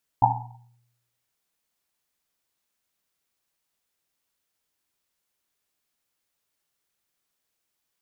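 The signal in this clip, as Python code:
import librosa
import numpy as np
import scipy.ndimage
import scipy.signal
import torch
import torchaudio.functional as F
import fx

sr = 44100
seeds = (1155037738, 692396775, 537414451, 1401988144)

y = fx.risset_drum(sr, seeds[0], length_s=1.1, hz=120.0, decay_s=0.88, noise_hz=850.0, noise_width_hz=180.0, noise_pct=70)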